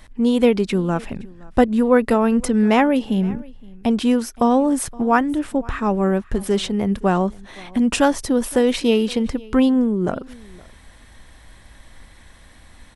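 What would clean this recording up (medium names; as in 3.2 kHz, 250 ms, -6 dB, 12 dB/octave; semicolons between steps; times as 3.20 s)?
inverse comb 518 ms -23.5 dB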